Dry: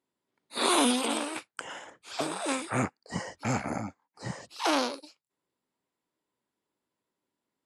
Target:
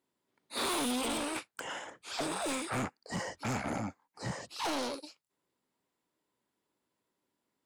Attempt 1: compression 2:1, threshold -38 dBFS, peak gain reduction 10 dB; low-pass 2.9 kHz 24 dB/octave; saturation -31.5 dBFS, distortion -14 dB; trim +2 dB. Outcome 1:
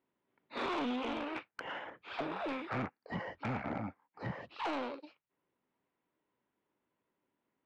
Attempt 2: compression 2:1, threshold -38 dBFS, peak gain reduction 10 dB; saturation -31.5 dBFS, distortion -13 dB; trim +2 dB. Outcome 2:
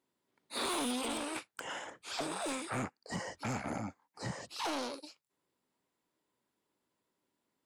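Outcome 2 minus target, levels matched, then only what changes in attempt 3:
compression: peak gain reduction +5.5 dB
change: compression 2:1, threshold -27 dBFS, peak gain reduction 4.5 dB

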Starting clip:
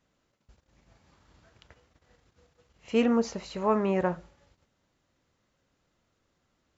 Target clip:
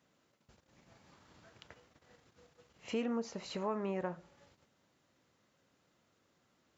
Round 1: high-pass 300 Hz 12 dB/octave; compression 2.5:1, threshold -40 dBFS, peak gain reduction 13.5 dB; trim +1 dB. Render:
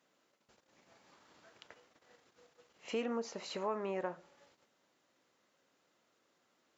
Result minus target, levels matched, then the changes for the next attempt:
125 Hz band -6.0 dB
change: high-pass 120 Hz 12 dB/octave

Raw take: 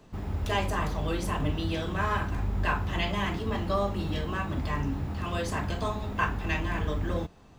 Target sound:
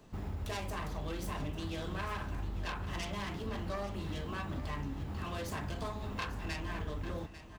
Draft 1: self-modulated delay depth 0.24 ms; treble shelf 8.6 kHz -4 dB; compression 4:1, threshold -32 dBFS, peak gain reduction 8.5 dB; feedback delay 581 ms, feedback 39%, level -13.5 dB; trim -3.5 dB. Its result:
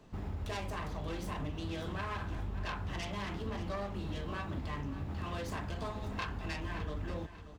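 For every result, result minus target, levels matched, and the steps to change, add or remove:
echo 265 ms early; 8 kHz band -3.5 dB
change: feedback delay 846 ms, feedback 39%, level -13.5 dB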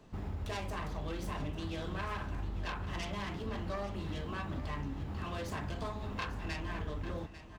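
8 kHz band -3.5 dB
change: treble shelf 8.6 kHz +5.5 dB

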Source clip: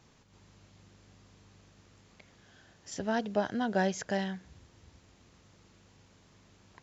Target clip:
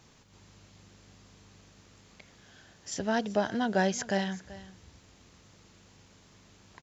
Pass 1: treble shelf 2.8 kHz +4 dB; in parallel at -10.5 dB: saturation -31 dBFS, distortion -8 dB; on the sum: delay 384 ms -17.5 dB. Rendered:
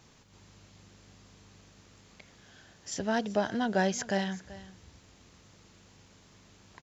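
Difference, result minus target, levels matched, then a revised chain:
saturation: distortion +8 dB
treble shelf 2.8 kHz +4 dB; in parallel at -10.5 dB: saturation -23.5 dBFS, distortion -16 dB; on the sum: delay 384 ms -17.5 dB

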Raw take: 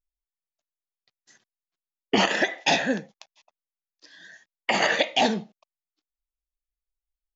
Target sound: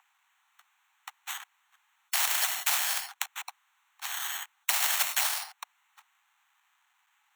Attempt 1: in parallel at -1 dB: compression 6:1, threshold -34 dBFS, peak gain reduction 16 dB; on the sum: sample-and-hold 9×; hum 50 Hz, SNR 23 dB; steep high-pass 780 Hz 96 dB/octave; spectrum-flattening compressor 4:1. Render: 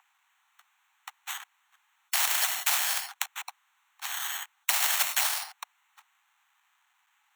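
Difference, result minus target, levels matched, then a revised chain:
compression: peak gain reduction -5.5 dB
in parallel at -1 dB: compression 6:1, threshold -40.5 dBFS, peak gain reduction 21.5 dB; on the sum: sample-and-hold 9×; hum 50 Hz, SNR 23 dB; steep high-pass 780 Hz 96 dB/octave; spectrum-flattening compressor 4:1

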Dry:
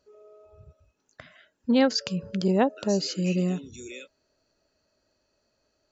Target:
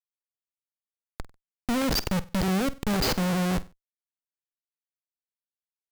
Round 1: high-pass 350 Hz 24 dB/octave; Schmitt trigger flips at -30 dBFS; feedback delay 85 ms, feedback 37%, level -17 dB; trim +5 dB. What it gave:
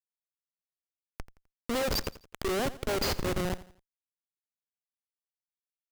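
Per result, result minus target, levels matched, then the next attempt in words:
echo 37 ms late; 250 Hz band -4.5 dB
high-pass 350 Hz 24 dB/octave; Schmitt trigger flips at -30 dBFS; feedback delay 48 ms, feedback 37%, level -17 dB; trim +5 dB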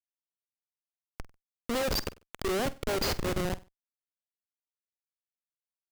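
250 Hz band -4.5 dB
high-pass 88 Hz 24 dB/octave; Schmitt trigger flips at -30 dBFS; feedback delay 48 ms, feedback 37%, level -17 dB; trim +5 dB

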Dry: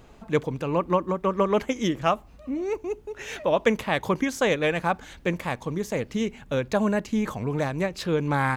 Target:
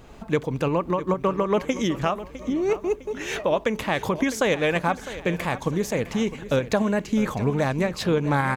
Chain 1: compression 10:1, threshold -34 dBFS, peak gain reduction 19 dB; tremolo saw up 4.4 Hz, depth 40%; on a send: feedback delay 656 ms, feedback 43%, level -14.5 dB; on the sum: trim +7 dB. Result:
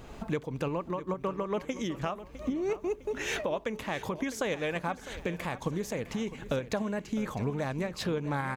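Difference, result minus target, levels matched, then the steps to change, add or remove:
compression: peak gain reduction +10 dB
change: compression 10:1, threshold -23 dBFS, peak gain reduction 9 dB

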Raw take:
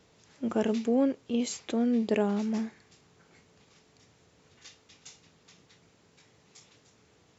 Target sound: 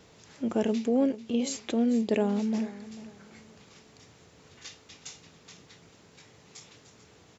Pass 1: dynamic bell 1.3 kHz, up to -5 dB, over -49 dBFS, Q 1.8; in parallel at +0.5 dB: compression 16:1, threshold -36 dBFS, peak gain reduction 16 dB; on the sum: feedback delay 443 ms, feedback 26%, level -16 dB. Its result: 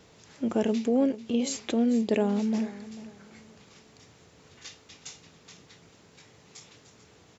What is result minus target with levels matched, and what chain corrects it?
compression: peak gain reduction -7 dB
dynamic bell 1.3 kHz, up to -5 dB, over -49 dBFS, Q 1.8; in parallel at +0.5 dB: compression 16:1, threshold -43.5 dBFS, peak gain reduction 23 dB; on the sum: feedback delay 443 ms, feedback 26%, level -16 dB

